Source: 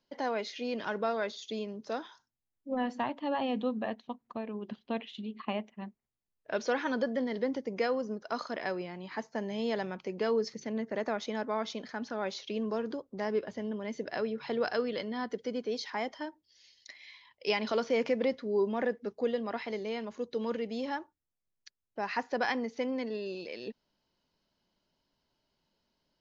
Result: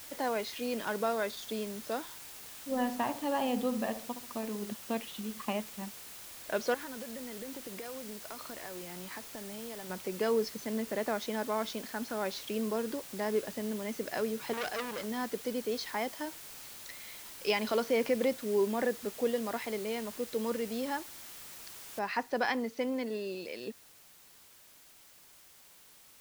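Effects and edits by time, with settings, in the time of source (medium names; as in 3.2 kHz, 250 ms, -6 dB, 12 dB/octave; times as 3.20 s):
2.03–4.72 s: filtered feedback delay 68 ms, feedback 42%, low-pass 1.1 kHz, level -9 dB
6.74–9.90 s: compression 10:1, threshold -40 dBFS
14.53–15.04 s: transformer saturation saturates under 3.2 kHz
21.99 s: noise floor step -48 dB -58 dB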